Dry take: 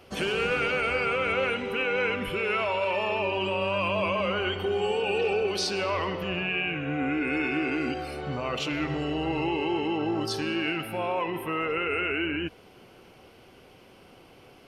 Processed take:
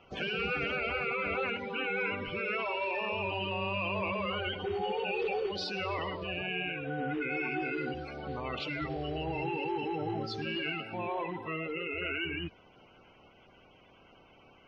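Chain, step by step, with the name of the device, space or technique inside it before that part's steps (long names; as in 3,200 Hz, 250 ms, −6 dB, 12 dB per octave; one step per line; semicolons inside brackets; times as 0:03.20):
clip after many re-uploads (low-pass filter 4,900 Hz 24 dB per octave; spectral magnitudes quantised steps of 30 dB)
0:11.56–0:12.02: parametric band 1,500 Hz −15 dB 0.45 octaves
level −5.5 dB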